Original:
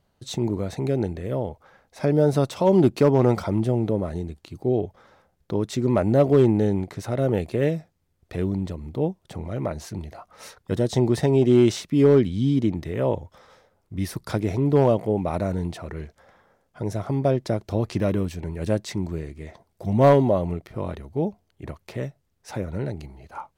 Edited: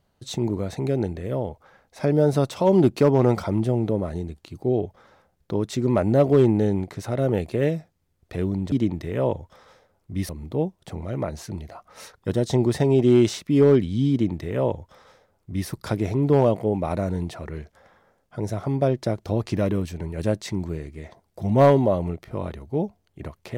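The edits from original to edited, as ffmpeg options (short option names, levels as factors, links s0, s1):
-filter_complex "[0:a]asplit=3[s0][s1][s2];[s0]atrim=end=8.722[s3];[s1]atrim=start=12.538:end=14.112[s4];[s2]atrim=start=8.718[s5];[s3][s4]acrossfade=d=0.004:c1=hsin:c2=hsin[s6];[s6][s5]acrossfade=d=0.004:c1=hsin:c2=hsin"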